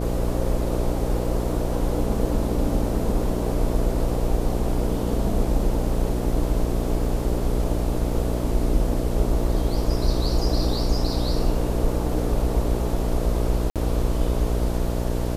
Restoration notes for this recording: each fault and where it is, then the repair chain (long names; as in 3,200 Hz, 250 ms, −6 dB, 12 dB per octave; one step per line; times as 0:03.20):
mains buzz 60 Hz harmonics 11 −26 dBFS
0:13.70–0:13.76: drop-out 57 ms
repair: hum removal 60 Hz, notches 11
repair the gap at 0:13.70, 57 ms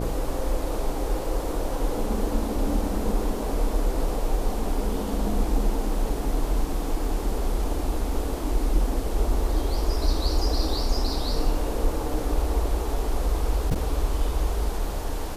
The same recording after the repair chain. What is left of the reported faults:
none of them is left